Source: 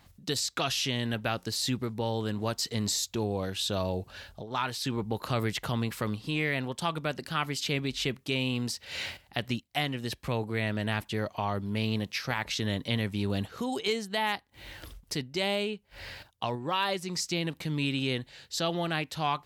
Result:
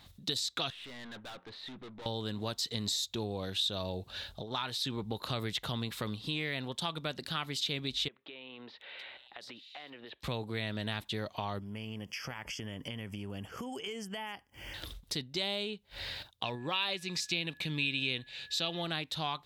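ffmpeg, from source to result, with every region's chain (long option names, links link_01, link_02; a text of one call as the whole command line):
ffmpeg -i in.wav -filter_complex "[0:a]asettb=1/sr,asplit=3[link_01][link_02][link_03];[link_01]atrim=end=0.704[link_04];[link_02]atrim=start=0.7:end=2.06,asetpts=PTS-STARTPTS,afade=type=in:duration=0.004:curve=qsin,afade=type=out:start_time=1.356:duration=0.004:curve=qsin,lowpass=frequency=1900:width=0.5412,lowpass=frequency=1900:width=1.3066,aemphasis=mode=production:type=riaa,aeval=exprs='(tanh(178*val(0)+0.25)-tanh(0.25))/178':channel_layout=same[link_05];[link_03]atrim=start=2.056[link_06];[link_04][link_05]acrossfade=duration=0.004:curve1=hsin:curve2=qsin[link_07];[link_07][link_06]acrossfade=duration=0.004:curve1=qsin:curve2=hsin,asettb=1/sr,asplit=3[link_08][link_09][link_10];[link_08]atrim=end=8.084[link_11];[link_09]atrim=start=8.08:end=10.23,asetpts=PTS-STARTPTS,afade=type=in:duration=0.004:curve=qsin,afade=type=out:start_time=2.146:duration=0.004:curve=qsin,acrossover=split=330 3200:gain=0.0708 1 0.0794[link_12][link_13][link_14];[link_12][link_13][link_14]amix=inputs=3:normalize=0,acompressor=threshold=-45dB:ratio=6:attack=3.2:release=140:knee=1:detection=peak,acrossover=split=3800[link_15][link_16];[link_16]adelay=730[link_17];[link_15][link_17]amix=inputs=2:normalize=0,atrim=end_sample=94815[link_18];[link_10]atrim=start=10.226[link_19];[link_11][link_18]acrossfade=duration=0.004:curve1=hsin:curve2=qsin[link_20];[link_20][link_19]acrossfade=duration=0.004:curve1=qsin:curve2=hsin,asettb=1/sr,asplit=3[link_21][link_22][link_23];[link_21]atrim=end=11.594[link_24];[link_22]atrim=start=11.59:end=14.74,asetpts=PTS-STARTPTS,afade=type=in:duration=0.004:curve=qsin,afade=type=out:start_time=3.146:duration=0.004:curve=qsin,acompressor=threshold=-36dB:ratio=5:attack=3.2:release=140:knee=1:detection=peak,asuperstop=centerf=3900:order=8:qfactor=2.6[link_25];[link_23]atrim=start=14.736[link_26];[link_24][link_25]acrossfade=duration=0.004:curve1=hsin:curve2=qsin[link_27];[link_27][link_26]acrossfade=duration=0.004:curve1=qsin:curve2=hsin,asettb=1/sr,asplit=3[link_28][link_29][link_30];[link_28]atrim=end=16.454[link_31];[link_29]atrim=start=16.45:end=18.82,asetpts=PTS-STARTPTS,afade=type=in:duration=0.004:curve=qsin,afade=type=out:start_time=2.366:duration=0.004:curve=qsin,equalizer=frequency=2500:width=4.2:gain=12.5,aeval=exprs='val(0)+0.00251*sin(2*PI*1700*n/s)':channel_layout=same[link_32];[link_30]atrim=start=18.816[link_33];[link_31][link_32]acrossfade=duration=0.004:curve1=hsin:curve2=qsin[link_34];[link_34][link_33]acrossfade=duration=0.004:curve1=qsin:curve2=hsin,equalizer=frequency=3700:width=3.4:gain=12,acompressor=threshold=-37dB:ratio=2" out.wav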